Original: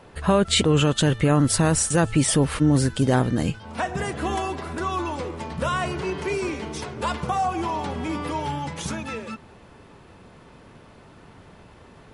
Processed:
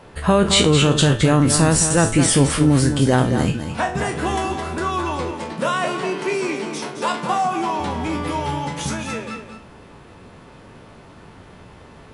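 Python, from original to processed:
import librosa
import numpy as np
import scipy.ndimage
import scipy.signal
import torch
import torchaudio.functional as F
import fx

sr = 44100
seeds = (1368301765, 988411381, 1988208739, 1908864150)

y = fx.spec_trails(x, sr, decay_s=0.32)
y = fx.highpass(y, sr, hz=170.0, slope=24, at=(5.31, 7.8))
y = y + 10.0 ** (-8.5 / 20.0) * np.pad(y, (int(217 * sr / 1000.0), 0))[:len(y)]
y = y * librosa.db_to_amplitude(3.0)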